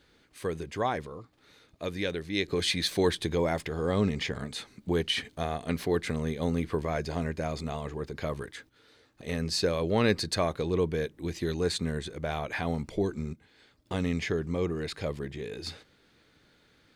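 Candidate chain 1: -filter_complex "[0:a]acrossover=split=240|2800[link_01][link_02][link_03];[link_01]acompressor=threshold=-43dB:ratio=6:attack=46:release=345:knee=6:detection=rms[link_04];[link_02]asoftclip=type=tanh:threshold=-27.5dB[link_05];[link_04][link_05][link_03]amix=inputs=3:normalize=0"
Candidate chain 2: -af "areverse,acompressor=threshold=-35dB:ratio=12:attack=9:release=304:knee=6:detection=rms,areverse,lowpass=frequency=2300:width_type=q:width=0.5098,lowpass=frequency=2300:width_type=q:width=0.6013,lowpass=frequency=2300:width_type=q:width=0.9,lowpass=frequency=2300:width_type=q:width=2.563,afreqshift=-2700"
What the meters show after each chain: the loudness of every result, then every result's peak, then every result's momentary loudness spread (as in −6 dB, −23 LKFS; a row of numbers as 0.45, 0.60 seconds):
−34.5, −39.0 LKFS; −16.0, −25.5 dBFS; 9, 6 LU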